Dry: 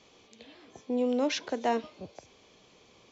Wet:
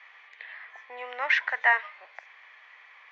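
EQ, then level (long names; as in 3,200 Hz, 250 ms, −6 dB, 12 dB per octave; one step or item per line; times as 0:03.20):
high-pass filter 880 Hz 24 dB per octave
low-pass with resonance 1,900 Hz, resonance Q 8.3
+6.0 dB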